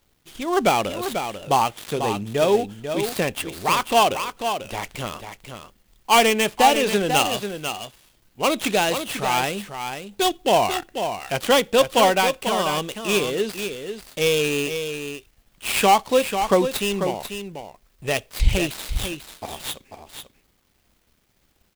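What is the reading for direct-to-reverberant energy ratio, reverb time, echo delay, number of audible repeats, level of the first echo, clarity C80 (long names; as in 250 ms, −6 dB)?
no reverb audible, no reverb audible, 492 ms, 1, −8.0 dB, no reverb audible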